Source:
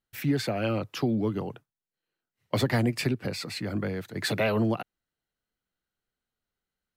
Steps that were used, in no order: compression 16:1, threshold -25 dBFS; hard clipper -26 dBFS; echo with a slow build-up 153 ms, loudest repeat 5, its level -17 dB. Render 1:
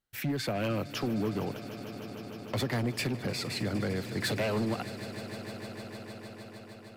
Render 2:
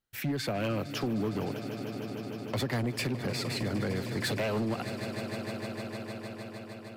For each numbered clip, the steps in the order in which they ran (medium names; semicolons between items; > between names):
compression > hard clipper > echo with a slow build-up; echo with a slow build-up > compression > hard clipper